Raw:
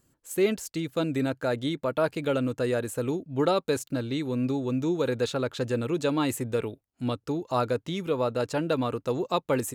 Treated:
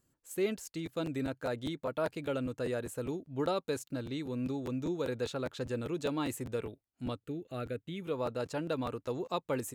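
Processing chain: 7.27–8.02 fixed phaser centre 2300 Hz, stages 4; crackling interface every 0.20 s, samples 512, repeat, from 0.65; gain -8 dB

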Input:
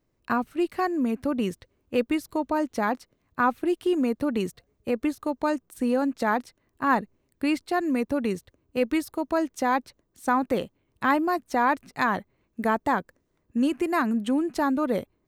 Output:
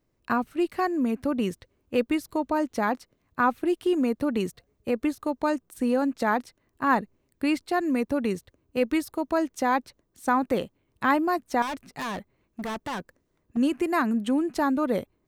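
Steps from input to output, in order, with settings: 11.62–13.57 overloaded stage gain 29.5 dB

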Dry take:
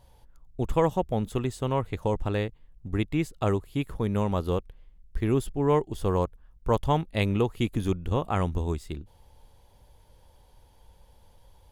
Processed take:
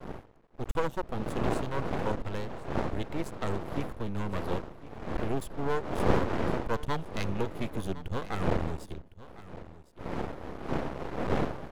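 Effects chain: wind noise 530 Hz -30 dBFS; expander -35 dBFS; half-wave rectifier; on a send: echo 1.058 s -16.5 dB; on the sum: gain -1.5 dB

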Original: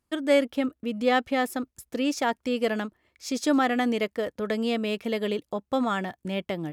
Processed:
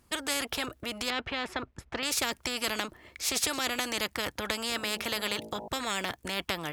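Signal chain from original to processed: 1.1–2.03 LPF 2300 Hz 12 dB/oct; 4.7–5.68 de-hum 55.24 Hz, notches 18; spectral compressor 4:1

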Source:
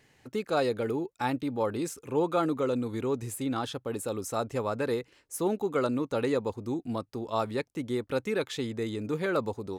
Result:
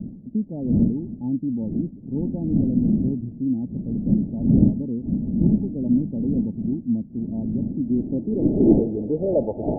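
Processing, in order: wind noise 380 Hz -31 dBFS; rippled Chebyshev low-pass 890 Hz, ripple 6 dB; low-pass sweep 220 Hz -> 680 Hz, 7.65–9.77; gain +6 dB

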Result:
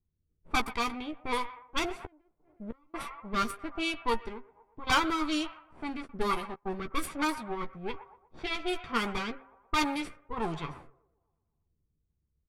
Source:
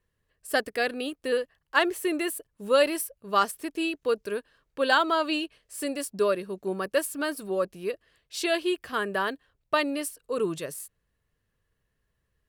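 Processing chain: minimum comb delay 0.86 ms; band-limited delay 0.121 s, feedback 62%, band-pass 1300 Hz, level -14 dB; 4.28–4.87 compressor 3:1, threshold -39 dBFS, peak gain reduction 11 dB; de-hum 132.8 Hz, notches 14; rotary speaker horn 1.2 Hz; 1.93–2.94 flipped gate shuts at -27 dBFS, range -32 dB; low-pass opened by the level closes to 390 Hz, open at -27.5 dBFS; 6.05–6.89 step gate "xx.xx.xx" 133 bpm -24 dB; doubler 13 ms -8 dB; gain +1 dB

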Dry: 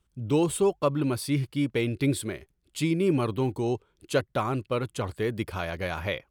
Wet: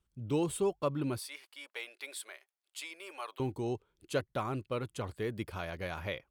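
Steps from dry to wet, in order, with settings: 1.19–3.4 HPF 680 Hz 24 dB/oct; gain -7.5 dB

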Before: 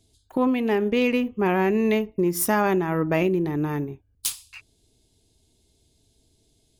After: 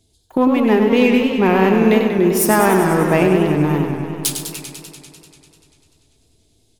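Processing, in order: in parallel at -4 dB: backlash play -27 dBFS; on the sum: outdoor echo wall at 24 m, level -17 dB; warbling echo 98 ms, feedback 79%, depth 143 cents, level -7 dB; gain +2.5 dB

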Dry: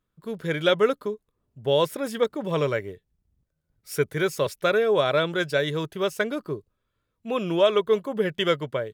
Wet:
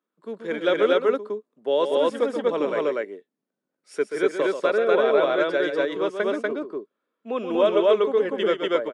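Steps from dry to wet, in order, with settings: steep high-pass 230 Hz 36 dB/oct; high shelf 2600 Hz -10.5 dB; loudspeakers at several distances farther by 45 m -8 dB, 83 m 0 dB; downsampling 22050 Hz; 4.52–7.37 high shelf 6900 Hz -6.5 dB

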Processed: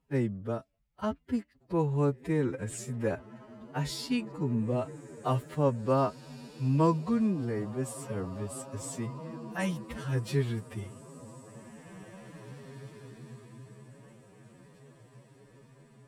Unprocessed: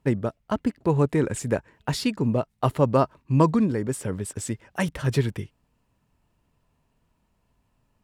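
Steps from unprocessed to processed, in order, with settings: on a send: diffused feedback echo 1.287 s, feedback 40%, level -14 dB; on the sum: time stretch by phase-locked vocoder 2×; gain -7 dB

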